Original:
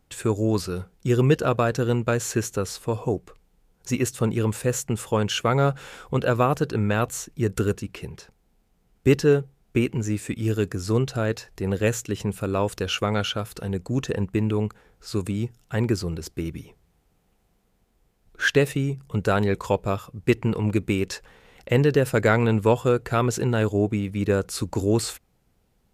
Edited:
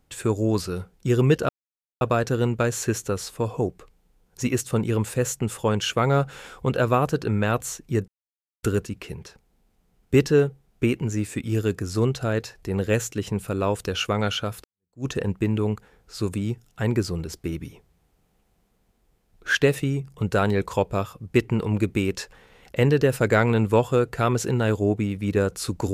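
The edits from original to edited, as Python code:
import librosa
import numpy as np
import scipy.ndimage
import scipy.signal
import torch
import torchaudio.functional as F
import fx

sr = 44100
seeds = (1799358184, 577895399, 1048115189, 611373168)

y = fx.edit(x, sr, fx.insert_silence(at_s=1.49, length_s=0.52),
    fx.insert_silence(at_s=7.56, length_s=0.55),
    fx.fade_in_span(start_s=13.57, length_s=0.42, curve='exp'), tone=tone)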